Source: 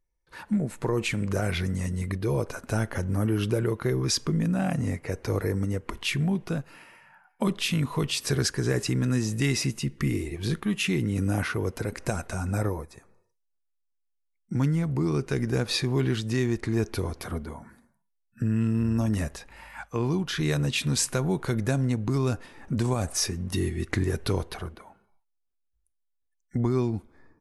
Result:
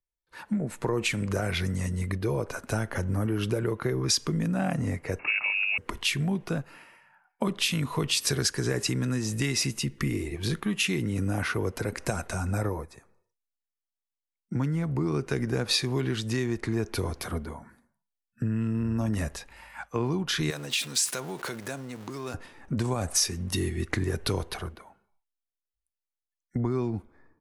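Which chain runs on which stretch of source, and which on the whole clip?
5.19–5.78 switching spikes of -27.5 dBFS + inverted band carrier 2700 Hz
20.5–22.34 zero-crossing step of -36.5 dBFS + compressor 5:1, threshold -26 dBFS + HPF 440 Hz 6 dB/oct
whole clip: low shelf 400 Hz -3.5 dB; compressor, threshold -28 dBFS; three-band expander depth 40%; gain +4 dB

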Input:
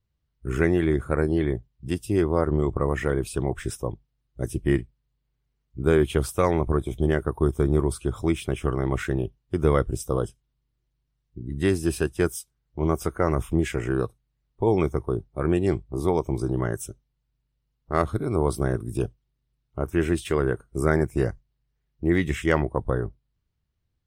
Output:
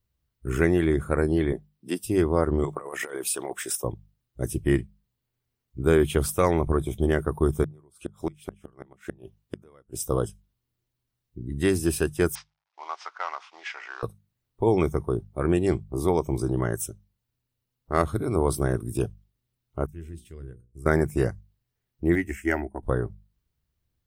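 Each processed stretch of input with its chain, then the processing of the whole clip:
1.52–2.04 HPF 210 Hz 24 dB/oct + notch 6700 Hz, Q 6.2
2.64–3.84 HPF 500 Hz + high shelf 5300 Hz +6 dB + negative-ratio compressor -32 dBFS, ratio -0.5
7.63–10.06 low shelf 130 Hz -12 dB + flipped gate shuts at -17 dBFS, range -32 dB
12.35–14.03 CVSD 64 kbps + elliptic band-pass 840–5500 Hz, stop band 80 dB + air absorption 83 m
19.86–20.86 passive tone stack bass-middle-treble 10-0-1 + notches 60/120/180/240/300/360/420/480 Hz
22.15–22.83 fixed phaser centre 740 Hz, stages 8 + upward expander, over -39 dBFS
whole clip: high shelf 9500 Hz +10 dB; notches 50/100/150/200 Hz

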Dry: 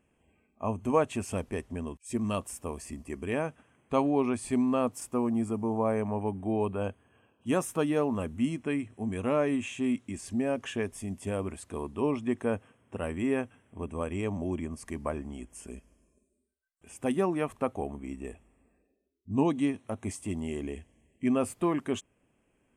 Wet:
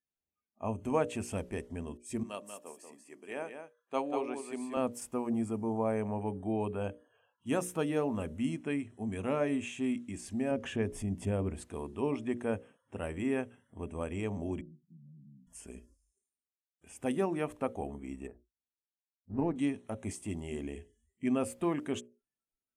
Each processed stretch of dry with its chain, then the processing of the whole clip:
2.23–4.77 HPF 340 Hz + echo 0.188 s -5 dB + upward expander, over -39 dBFS
10.51–11.63 tilt -2 dB/oct + upward compressor, threshold -31 dBFS
14.61–15.47 Butterworth band-pass 160 Hz, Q 3.2 + compressor, threshold -48 dBFS
18.27–19.56 G.711 law mismatch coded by A + AM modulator 170 Hz, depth 30% + running mean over 13 samples
whole clip: bell 1100 Hz -5.5 dB 0.21 oct; notches 60/120/180/240/300/360/420/480/540/600 Hz; spectral noise reduction 28 dB; gain -3 dB

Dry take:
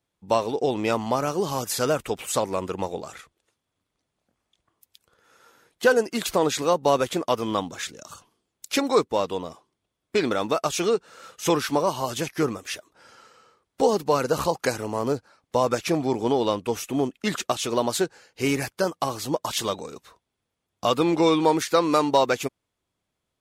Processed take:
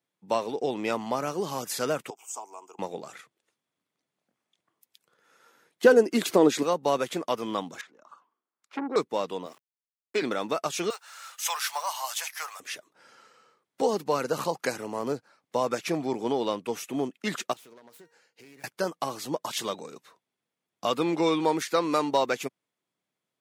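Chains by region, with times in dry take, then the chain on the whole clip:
2.1–2.79 HPF 480 Hz 24 dB/oct + band shelf 2300 Hz -15 dB 2.3 oct + fixed phaser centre 2700 Hz, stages 8
5.84–6.63 bell 320 Hz +11 dB 1.6 oct + mismatched tape noise reduction encoder only
7.81–8.96 bell 260 Hz +9 dB 1.4 oct + auto-wah 390–1200 Hz, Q 2.6, down, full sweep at -16.5 dBFS + core saturation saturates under 1000 Hz
9.46–10.22 HPF 240 Hz 24 dB/oct + sample gate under -47.5 dBFS
10.9–12.6 G.711 law mismatch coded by mu + steep high-pass 730 Hz + high shelf 5100 Hz +8.5 dB
17.53–18.64 self-modulated delay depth 0.22 ms + resonator 470 Hz, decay 0.23 s + compressor 8:1, threshold -44 dBFS
whole clip: HPF 140 Hz 24 dB/oct; bell 2000 Hz +3 dB 0.67 oct; gain -5 dB

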